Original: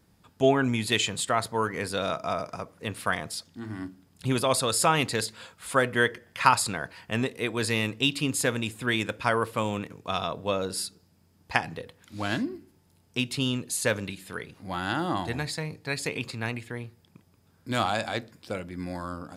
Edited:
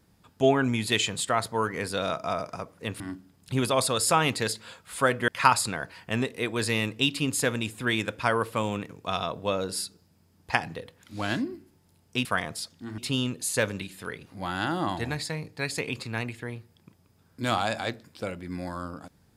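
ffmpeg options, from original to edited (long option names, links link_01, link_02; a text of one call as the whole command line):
ffmpeg -i in.wav -filter_complex "[0:a]asplit=5[link_01][link_02][link_03][link_04][link_05];[link_01]atrim=end=3.002[link_06];[link_02]atrim=start=3.728:end=6.012[link_07];[link_03]atrim=start=6.288:end=13.262[link_08];[link_04]atrim=start=2.998:end=3.732[link_09];[link_05]atrim=start=13.258[link_10];[link_06][link_07]acrossfade=duration=0.004:curve1=hsin:curve2=hsin[link_11];[link_11][link_08]acrossfade=duration=0.004:curve1=hsin:curve2=hsin[link_12];[link_12][link_09]acrossfade=duration=0.004:curve1=hsin:curve2=hsin[link_13];[link_13][link_10]acrossfade=duration=0.004:curve1=hsin:curve2=hsin" out.wav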